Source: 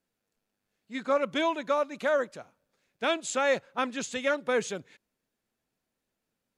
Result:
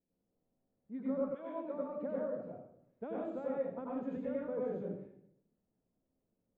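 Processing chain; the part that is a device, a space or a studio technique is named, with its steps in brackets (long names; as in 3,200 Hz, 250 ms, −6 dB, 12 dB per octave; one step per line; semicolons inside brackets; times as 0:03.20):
television next door (downward compressor 3 to 1, threshold −36 dBFS, peak gain reduction 11.5 dB; low-pass filter 500 Hz 12 dB per octave; convolution reverb RT60 0.70 s, pre-delay 83 ms, DRR −5 dB)
0:01.34–0:01.84: high-pass filter 790 Hz → 200 Hz 12 dB per octave
level −2 dB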